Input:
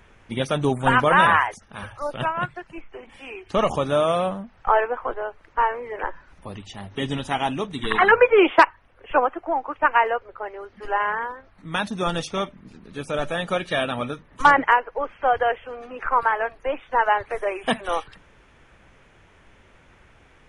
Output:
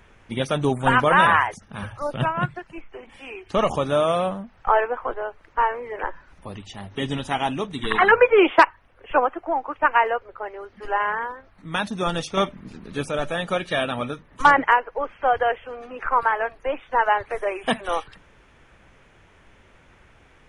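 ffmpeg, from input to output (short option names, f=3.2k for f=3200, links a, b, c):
-filter_complex "[0:a]asettb=1/sr,asplit=3[a][b][c];[a]atrim=end=1.384[d];[b]atrim=start=1.38:end=2.59,asetpts=PTS-STARTPTS,afade=t=in:d=0.004:c=qsin,afade=t=out:st=1.206:d=0.004:c=qsin,equalizer=f=150:t=o:w=1.8:g=8[e];[c]atrim=start=2.586[f];[d][e]acrossfade=d=0.004:c1=hsin:c2=qsin[g];[g][f]acrossfade=d=0.004:c1=qsin:c2=hsin,asettb=1/sr,asplit=3[h][i][j];[h]atrim=end=12.374[k];[i]atrim=start=12.37:end=13.09,asetpts=PTS-STARTPTS,afade=t=in:d=0.004:c=qsin,afade=t=out:st=0.716:d=0.004:c=qsin,acontrast=30[l];[j]atrim=start=13.086[m];[k][l]acrossfade=d=0.004:c1=hsin:c2=qsin[n];[n][m]acrossfade=d=0.004:c1=qsin:c2=hsin"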